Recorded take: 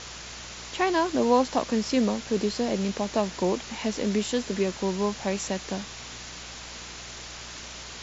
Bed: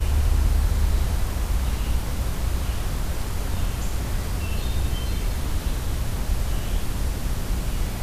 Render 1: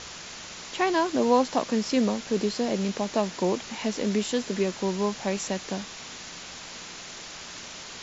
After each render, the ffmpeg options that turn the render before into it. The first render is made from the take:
-af "bandreject=f=60:t=h:w=4,bandreject=f=120:t=h:w=4"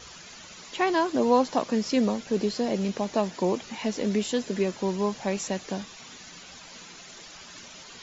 -af "afftdn=nr=10:nf=-41"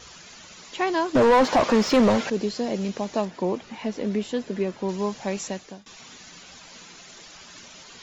-filter_complex "[0:a]asettb=1/sr,asplit=3[a][b][c];[a]atrim=end=1.154[d];[b]atrim=start=1.15:end=2.3,asetpts=PTS-STARTPTS,afade=t=in:d=0.004:c=qsin,afade=t=out:st=1.146:d=0.004:c=qsin,asplit=2[e][f];[f]highpass=f=720:p=1,volume=27dB,asoftclip=type=tanh:threshold=-8.5dB[g];[e][g]amix=inputs=2:normalize=0,lowpass=f=1.4k:p=1,volume=-6dB[h];[c]atrim=start=2.296[i];[d][h]acrossfade=d=0.004:c1=hsin:c2=qsin[j];[j][i]acrossfade=d=0.004:c1=qsin:c2=hsin,asettb=1/sr,asplit=3[k][l][m];[k]atrim=end=3.254[n];[l]atrim=start=3.25:end=4.89,asetpts=PTS-STARTPTS,afade=t=in:d=0.004:c=qsin,afade=t=out:st=1.636:d=0.004:c=qsin,lowpass=f=2.5k:p=1[o];[m]atrim=start=4.886[p];[n][o]acrossfade=d=0.004:c1=hsin:c2=qsin[q];[q][p]acrossfade=d=0.004:c1=qsin:c2=hsin,asplit=2[r][s];[r]atrim=end=5.86,asetpts=PTS-STARTPTS,afade=t=out:st=5.45:d=0.41:silence=0.0630957[t];[s]atrim=start=5.86,asetpts=PTS-STARTPTS,afade=t=in:d=0.004:c=hsin:silence=0.0630957[u];[t][u]concat=n=2:v=0:a=1"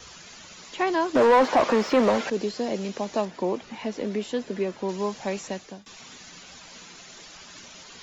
-filter_complex "[0:a]acrossover=split=240|630|2700[a][b][c][d];[a]acompressor=threshold=-38dB:ratio=6[e];[d]alimiter=level_in=8.5dB:limit=-24dB:level=0:latency=1,volume=-8.5dB[f];[e][b][c][f]amix=inputs=4:normalize=0"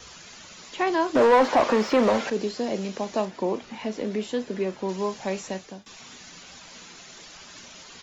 -filter_complex "[0:a]asplit=2[a][b];[b]adelay=37,volume=-13.5dB[c];[a][c]amix=inputs=2:normalize=0"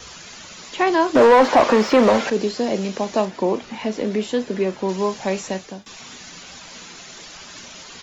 -af "volume=6dB,alimiter=limit=-3dB:level=0:latency=1"

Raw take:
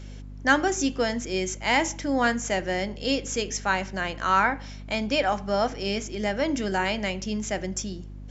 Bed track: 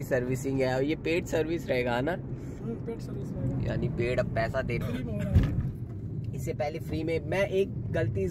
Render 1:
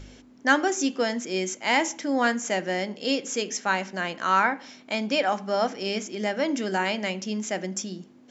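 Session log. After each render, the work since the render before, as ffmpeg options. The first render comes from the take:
-af "bandreject=f=50:t=h:w=4,bandreject=f=100:t=h:w=4,bandreject=f=150:t=h:w=4,bandreject=f=200:t=h:w=4"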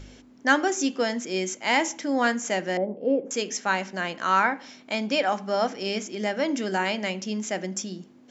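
-filter_complex "[0:a]asettb=1/sr,asplit=3[a][b][c];[a]atrim=end=2.774[d];[b]atrim=start=2.77:end=3.31,asetpts=PTS-STARTPTS,afade=t=in:d=0.004:c=qsin,afade=t=out:st=0.536:d=0.004:c=qsin,lowpass=f=600:t=q:w=1.9[e];[c]atrim=start=3.306[f];[d][e]acrossfade=d=0.004:c1=hsin:c2=qsin[g];[g][f]acrossfade=d=0.004:c1=qsin:c2=hsin"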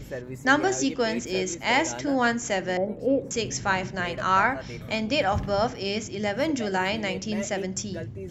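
-filter_complex "[1:a]volume=-7.5dB[a];[0:a][a]amix=inputs=2:normalize=0"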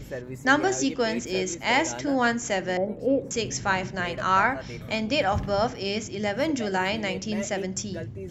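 -af anull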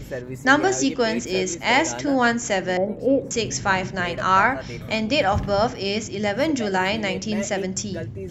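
-af "volume=4dB"

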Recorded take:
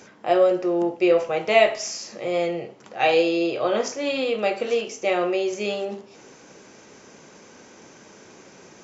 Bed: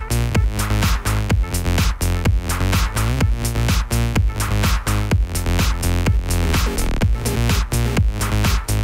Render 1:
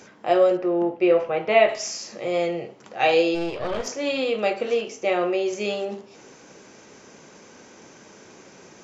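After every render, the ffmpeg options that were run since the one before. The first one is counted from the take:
-filter_complex "[0:a]asettb=1/sr,asplit=3[a][b][c];[a]atrim=end=0.574[d];[b]atrim=start=0.57:end=1.69,asetpts=PTS-STARTPTS,afade=t=in:d=0.004:c=qsin,afade=t=out:st=1.116:d=0.004:c=qsin,lowpass=2.8k[e];[c]atrim=start=1.686[f];[d][e]acrossfade=d=0.004:c1=hsin:c2=qsin[g];[g][f]acrossfade=d=0.004:c1=qsin:c2=hsin,asplit=3[h][i][j];[h]afade=t=out:st=3.34:d=0.02[k];[i]aeval=exprs='(tanh(12.6*val(0)+0.75)-tanh(0.75))/12.6':c=same,afade=t=in:st=3.34:d=0.02,afade=t=out:st=3.86:d=0.02[l];[j]afade=t=in:st=3.86:d=0.02[m];[k][l][m]amix=inputs=3:normalize=0,asettb=1/sr,asplit=3[n][o][p];[n]atrim=end=4.534[q];[o]atrim=start=4.53:end=5.46,asetpts=PTS-STARTPTS,afade=t=in:d=0.004:c=qsin,afade=t=out:st=0.926:d=0.004:c=qsin,highshelf=f=5k:g=-6.5[r];[p]atrim=start=5.456[s];[q][r]acrossfade=d=0.004:c1=hsin:c2=qsin[t];[t][s]acrossfade=d=0.004:c1=qsin:c2=hsin"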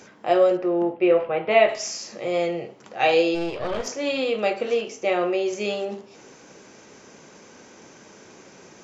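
-filter_complex "[0:a]asettb=1/sr,asplit=3[a][b][c];[a]atrim=end=0.934[d];[b]atrim=start=0.93:end=1.51,asetpts=PTS-STARTPTS,afade=t=in:d=0.004:c=qsin,afade=t=out:st=0.576:d=0.004:c=qsin,lowpass=f=3.8k:w=0.5412,lowpass=f=3.8k:w=1.3066[e];[c]atrim=start=1.506[f];[d][e]acrossfade=d=0.004:c1=hsin:c2=qsin[g];[g][f]acrossfade=d=0.004:c1=qsin:c2=hsin"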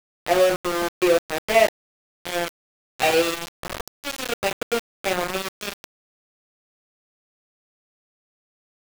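-af "aeval=exprs='val(0)*gte(abs(val(0)),0.112)':c=same"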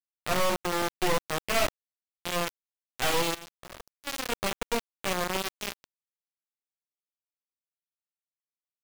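-af "aeval=exprs='0.596*(cos(1*acos(clip(val(0)/0.596,-1,1)))-cos(1*PI/2))+0.0335*(cos(4*acos(clip(val(0)/0.596,-1,1)))-cos(4*PI/2))+0.211*(cos(6*acos(clip(val(0)/0.596,-1,1)))-cos(6*PI/2))+0.0299*(cos(8*acos(clip(val(0)/0.596,-1,1)))-cos(8*PI/2))':c=same,asoftclip=type=hard:threshold=-18.5dB"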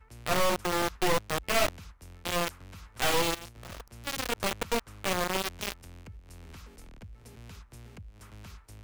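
-filter_complex "[1:a]volume=-30dB[a];[0:a][a]amix=inputs=2:normalize=0"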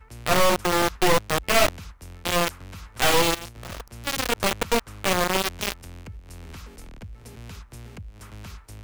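-af "volume=7dB"

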